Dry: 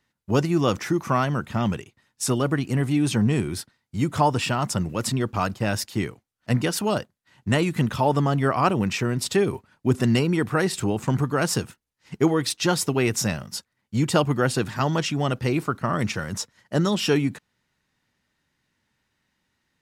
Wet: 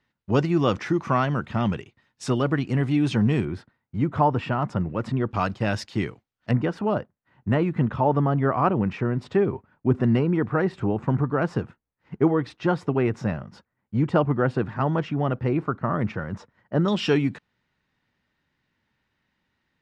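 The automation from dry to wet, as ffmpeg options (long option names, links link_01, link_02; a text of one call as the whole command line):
ffmpeg -i in.wav -af "asetnsamples=nb_out_samples=441:pad=0,asendcmd='3.45 lowpass f 1700;5.31 lowpass f 4100;6.51 lowpass f 1500;16.88 lowpass f 3700',lowpass=3800" out.wav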